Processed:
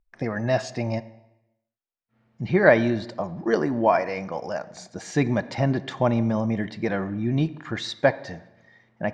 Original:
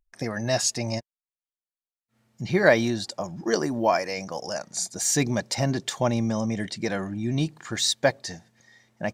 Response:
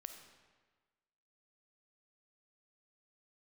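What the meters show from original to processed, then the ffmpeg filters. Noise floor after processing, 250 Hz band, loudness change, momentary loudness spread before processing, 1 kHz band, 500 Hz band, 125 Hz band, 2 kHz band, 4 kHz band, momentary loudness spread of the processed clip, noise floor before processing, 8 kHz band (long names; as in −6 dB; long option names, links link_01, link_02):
−82 dBFS, +2.5 dB, +1.0 dB, 11 LU, +2.5 dB, +2.5 dB, +2.5 dB, +1.0 dB, −8.0 dB, 12 LU, below −85 dBFS, −17.0 dB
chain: -filter_complex "[0:a]lowpass=2600,asplit=2[link_01][link_02];[1:a]atrim=start_sample=2205,asetrate=66150,aresample=44100,highshelf=frequency=4500:gain=-10[link_03];[link_02][link_03]afir=irnorm=-1:irlink=0,volume=4.5dB[link_04];[link_01][link_04]amix=inputs=2:normalize=0,volume=-1.5dB"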